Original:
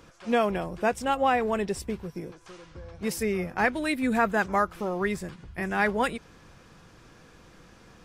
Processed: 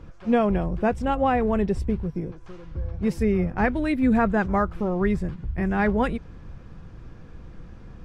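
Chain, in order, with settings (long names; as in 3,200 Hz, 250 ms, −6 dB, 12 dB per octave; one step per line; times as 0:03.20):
RIAA equalisation playback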